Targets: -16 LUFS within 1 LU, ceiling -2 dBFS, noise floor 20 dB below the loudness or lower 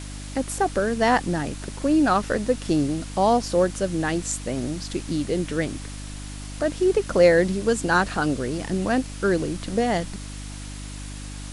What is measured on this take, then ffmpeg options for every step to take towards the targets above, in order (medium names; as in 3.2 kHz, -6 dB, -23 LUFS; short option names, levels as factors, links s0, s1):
hum 50 Hz; highest harmonic 300 Hz; hum level -33 dBFS; noise floor -36 dBFS; noise floor target -44 dBFS; loudness -23.5 LUFS; peak level -5.0 dBFS; loudness target -16.0 LUFS
-> -af "bandreject=f=50:t=h:w=4,bandreject=f=100:t=h:w=4,bandreject=f=150:t=h:w=4,bandreject=f=200:t=h:w=4,bandreject=f=250:t=h:w=4,bandreject=f=300:t=h:w=4"
-af "afftdn=nr=8:nf=-36"
-af "volume=2.37,alimiter=limit=0.794:level=0:latency=1"